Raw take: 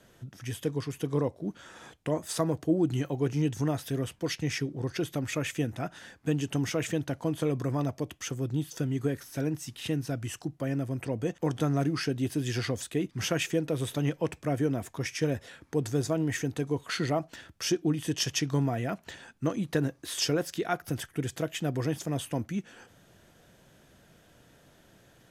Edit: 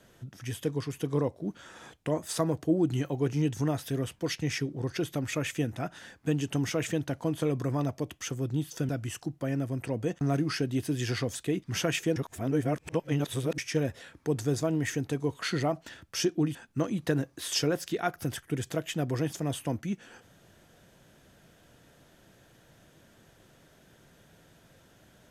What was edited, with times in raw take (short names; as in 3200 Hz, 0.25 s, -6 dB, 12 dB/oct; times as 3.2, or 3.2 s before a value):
8.89–10.08 cut
11.4–11.68 cut
13.63–15.05 reverse
18.02–19.21 cut